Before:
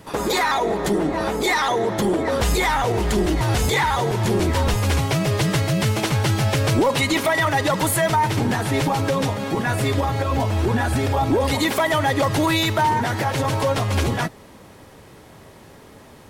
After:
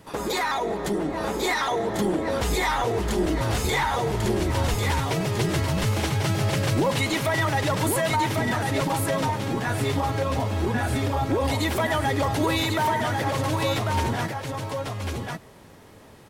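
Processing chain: delay 1095 ms -4 dB; trim -5.5 dB

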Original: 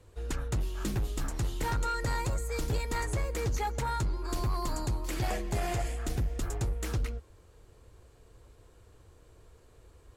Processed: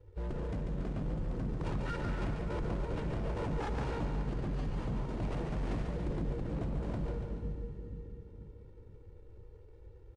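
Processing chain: median filter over 41 samples; treble shelf 7.9 kHz -11.5 dB; comb 2.2 ms, depth 94%; Schroeder reverb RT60 3.1 s, combs from 30 ms, DRR 6 dB; in parallel at -2.5 dB: compressor with a negative ratio -28 dBFS, ratio -0.5; on the sum: wavefolder -23 dBFS; feedback comb 97 Hz, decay 1.1 s, harmonics odd; on a send: two-band feedback delay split 380 Hz, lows 479 ms, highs 142 ms, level -6 dB; on the sum: dynamic bell 190 Hz, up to +5 dB, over -56 dBFS, Q 1.2; trim -2 dB; AAC 96 kbps 22.05 kHz

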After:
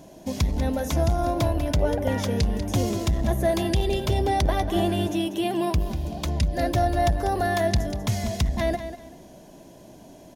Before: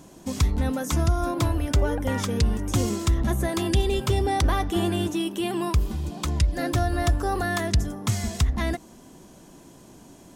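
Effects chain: graphic EQ with 31 bands 630 Hz +11 dB, 1.25 kHz -9 dB, 8 kHz -9 dB; feedback delay 193 ms, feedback 25%, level -11 dB; transformer saturation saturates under 140 Hz

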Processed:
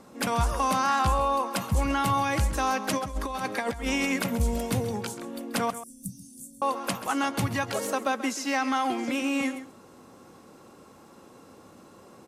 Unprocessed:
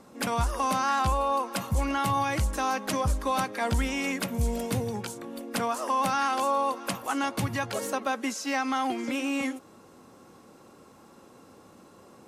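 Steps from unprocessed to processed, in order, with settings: 2.97–4.40 s: compressor with a negative ratio -30 dBFS, ratio -0.5; 5.70–6.62 s: Chebyshev band-stop 180–8300 Hz, order 3; echo from a far wall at 23 m, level -13 dB; trim +1.5 dB

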